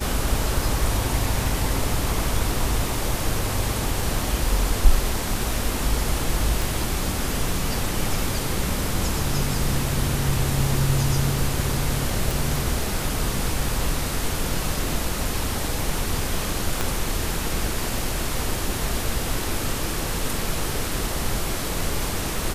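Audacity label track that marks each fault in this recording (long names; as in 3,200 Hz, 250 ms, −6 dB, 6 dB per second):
6.620000	6.620000	click
12.310000	12.310000	click
16.810000	16.810000	click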